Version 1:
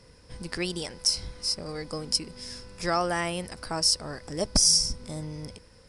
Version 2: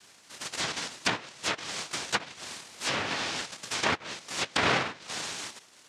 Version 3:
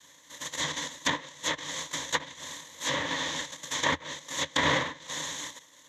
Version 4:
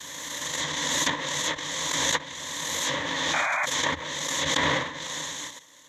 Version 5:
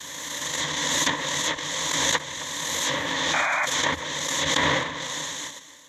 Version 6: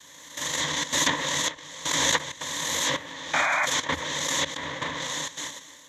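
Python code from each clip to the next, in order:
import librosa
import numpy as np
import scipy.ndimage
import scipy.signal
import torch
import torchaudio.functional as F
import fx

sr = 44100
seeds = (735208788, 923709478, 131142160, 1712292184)

y1 = fx.dynamic_eq(x, sr, hz=3700.0, q=1.8, threshold_db=-39.0, ratio=4.0, max_db=6)
y1 = fx.noise_vocoder(y1, sr, seeds[0], bands=1)
y1 = fx.env_lowpass_down(y1, sr, base_hz=2200.0, full_db=-21.5)
y2 = fx.ripple_eq(y1, sr, per_octave=1.1, db=13)
y2 = y2 * librosa.db_to_amplitude(-2.0)
y3 = fx.rider(y2, sr, range_db=4, speed_s=2.0)
y3 = fx.spec_paint(y3, sr, seeds[1], shape='noise', start_s=3.33, length_s=0.33, low_hz=570.0, high_hz=2500.0, level_db=-26.0)
y3 = fx.pre_swell(y3, sr, db_per_s=21.0)
y4 = y3 + 10.0 ** (-15.5 / 20.0) * np.pad(y3, (int(265 * sr / 1000.0), 0))[:len(y3)]
y4 = y4 * librosa.db_to_amplitude(2.0)
y5 = fx.step_gate(y4, sr, bpm=162, pattern='....xxxxx.xxxxxx', floor_db=-12.0, edge_ms=4.5)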